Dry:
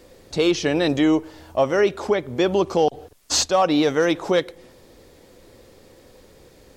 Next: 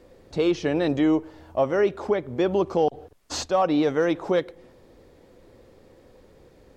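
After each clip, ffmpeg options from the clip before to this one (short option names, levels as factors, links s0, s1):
-af "highshelf=f=2800:g=-11.5,volume=0.75"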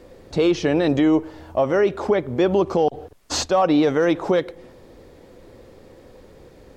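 -af "alimiter=limit=0.158:level=0:latency=1:release=65,volume=2.11"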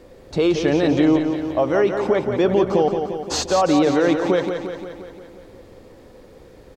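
-af "aecho=1:1:175|350|525|700|875|1050|1225|1400:0.447|0.268|0.161|0.0965|0.0579|0.0347|0.0208|0.0125"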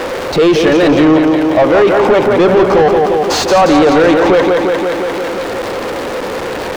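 -filter_complex "[0:a]aeval=exprs='val(0)+0.5*0.0335*sgn(val(0))':c=same,asplit=2[s0][s1];[s1]highpass=f=720:p=1,volume=12.6,asoftclip=type=tanh:threshold=0.531[s2];[s0][s2]amix=inputs=2:normalize=0,lowpass=f=1900:p=1,volume=0.501,volume=1.68"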